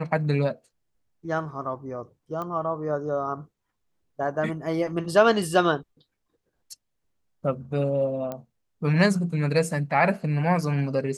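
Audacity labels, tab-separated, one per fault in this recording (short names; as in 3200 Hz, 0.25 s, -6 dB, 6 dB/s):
2.420000	2.420000	pop -21 dBFS
8.320000	8.320000	pop -19 dBFS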